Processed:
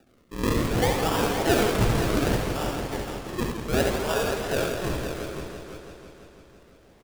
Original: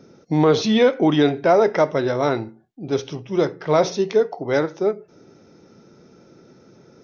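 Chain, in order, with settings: HPF 950 Hz 12 dB/oct; echo 0.35 s -6 dB; decimation with a swept rate 41×, swing 100% 0.66 Hz; tapped delay 69/86/520 ms -6/-8/-8.5 dB; warbling echo 0.166 s, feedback 74%, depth 105 cents, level -8 dB

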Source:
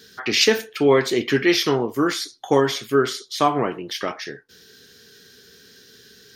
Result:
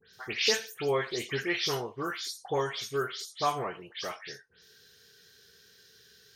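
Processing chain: spectral delay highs late, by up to 0.127 s; bell 270 Hz -13 dB 0.81 oct; gain -8.5 dB

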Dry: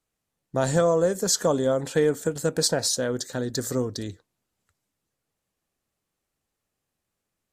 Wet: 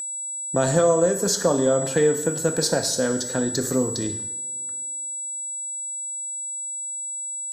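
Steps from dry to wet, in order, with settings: two-slope reverb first 0.7 s, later 2.7 s, from -28 dB, DRR 6 dB; whine 7800 Hz -31 dBFS; three-band squash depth 40%; gain +1.5 dB

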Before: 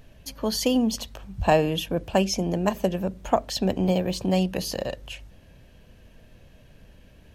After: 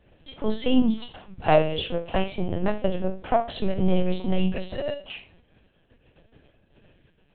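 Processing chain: gate -49 dBFS, range -13 dB; HPF 130 Hz 24 dB/oct; soft clip -11 dBFS, distortion -19 dB; phaser 0.31 Hz, delay 1.5 ms, feedback 21%; flutter echo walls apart 4.7 m, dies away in 0.32 s; LPC vocoder at 8 kHz pitch kept

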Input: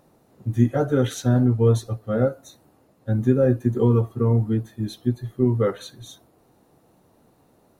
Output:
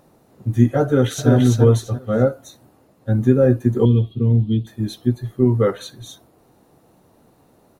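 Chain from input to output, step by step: 0.84–1.3 echo throw 0.34 s, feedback 25%, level -2.5 dB; 3.85–4.67 EQ curve 220 Hz 0 dB, 1600 Hz -22 dB, 3400 Hz +14 dB, 5700 Hz -16 dB; gain +4 dB

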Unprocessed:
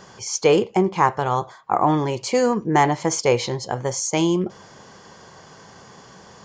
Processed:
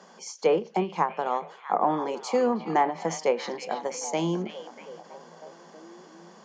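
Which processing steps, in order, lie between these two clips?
rippled Chebyshev high-pass 160 Hz, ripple 6 dB; delay with a stepping band-pass 0.321 s, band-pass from 2900 Hz, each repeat -0.7 oct, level -7 dB; treble ducked by the level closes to 1100 Hz, closed at -11 dBFS; ending taper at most 210 dB/s; gain -3 dB

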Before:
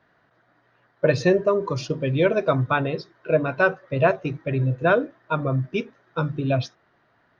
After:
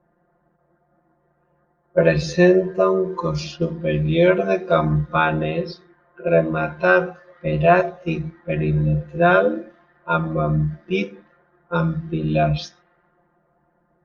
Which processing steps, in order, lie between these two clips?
low-pass opened by the level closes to 750 Hz, open at -19.5 dBFS; granular stretch 1.9×, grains 24 ms; gain +4 dB

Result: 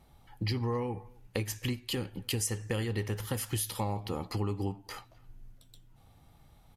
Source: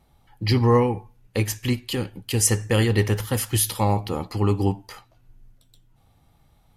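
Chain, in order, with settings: compressor 5:1, threshold -31 dBFS, peak gain reduction 16 dB; speakerphone echo 0.26 s, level -26 dB

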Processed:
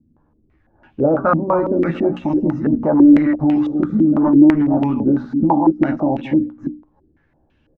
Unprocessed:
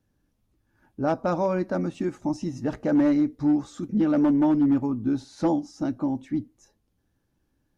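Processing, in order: reverse delay 0.159 s, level -10 dB; notches 60/120/180/240/300 Hz; doubler 13 ms -4.5 dB; maximiser +19 dB; stepped low-pass 6 Hz 250–2800 Hz; gain -9.5 dB

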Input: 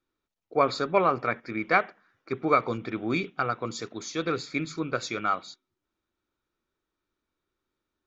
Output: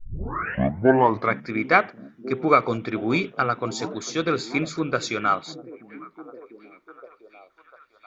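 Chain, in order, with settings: tape start at the beginning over 1.35 s; delay with a stepping band-pass 0.698 s, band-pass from 200 Hz, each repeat 0.7 oct, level -12 dB; gain +5 dB

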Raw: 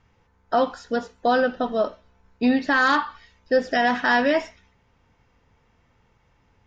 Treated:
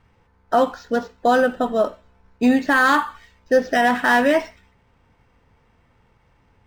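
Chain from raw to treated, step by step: decimation joined by straight lines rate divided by 4×; gain +3.5 dB

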